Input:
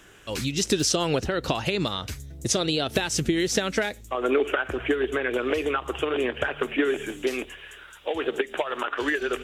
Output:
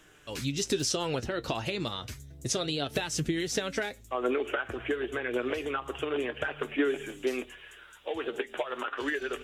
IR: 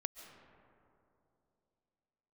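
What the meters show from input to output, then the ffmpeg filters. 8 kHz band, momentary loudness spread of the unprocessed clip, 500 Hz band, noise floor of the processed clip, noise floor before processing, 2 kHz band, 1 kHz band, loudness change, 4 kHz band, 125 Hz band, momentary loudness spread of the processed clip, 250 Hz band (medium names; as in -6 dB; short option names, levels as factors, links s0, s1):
-6.0 dB, 9 LU, -6.0 dB, -53 dBFS, -47 dBFS, -6.0 dB, -6.0 dB, -6.0 dB, -6.0 dB, -5.5 dB, 8 LU, -6.0 dB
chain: -af "flanger=delay=6.4:depth=2.6:regen=57:speed=0.31:shape=triangular,volume=0.794"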